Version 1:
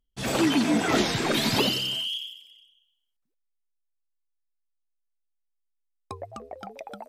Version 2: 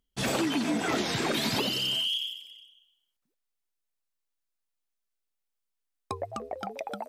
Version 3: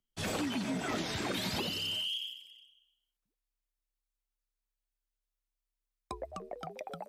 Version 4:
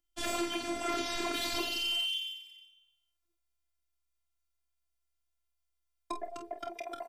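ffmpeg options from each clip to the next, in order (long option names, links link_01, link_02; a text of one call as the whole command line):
ffmpeg -i in.wav -af "lowshelf=frequency=62:gain=-10,acompressor=threshold=-30dB:ratio=5,volume=4dB" out.wav
ffmpeg -i in.wav -af "afreqshift=-34,volume=-6.5dB" out.wav
ffmpeg -i in.wav -af "afftfilt=real='hypot(re,im)*cos(PI*b)':imag='0':win_size=512:overlap=0.75,aecho=1:1:27|48:0.299|0.376,volume=5dB" out.wav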